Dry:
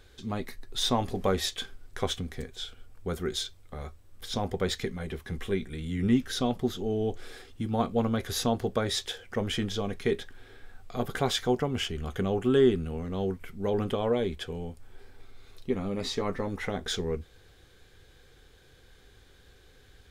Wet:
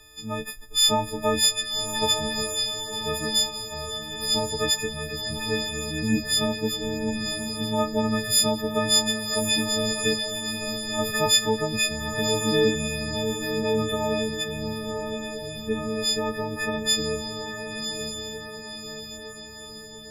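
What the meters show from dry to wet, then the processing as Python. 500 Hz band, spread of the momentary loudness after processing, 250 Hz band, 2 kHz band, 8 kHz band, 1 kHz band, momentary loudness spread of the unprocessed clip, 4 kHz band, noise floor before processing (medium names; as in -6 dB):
+3.0 dB, 13 LU, +2.5 dB, +10.0 dB, +14.5 dB, +5.0 dB, 13 LU, +11.5 dB, -57 dBFS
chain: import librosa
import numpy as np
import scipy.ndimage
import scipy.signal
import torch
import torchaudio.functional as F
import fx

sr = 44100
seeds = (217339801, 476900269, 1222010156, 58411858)

y = fx.freq_snap(x, sr, grid_st=6)
y = fx.echo_diffused(y, sr, ms=1068, feedback_pct=53, wet_db=-6.0)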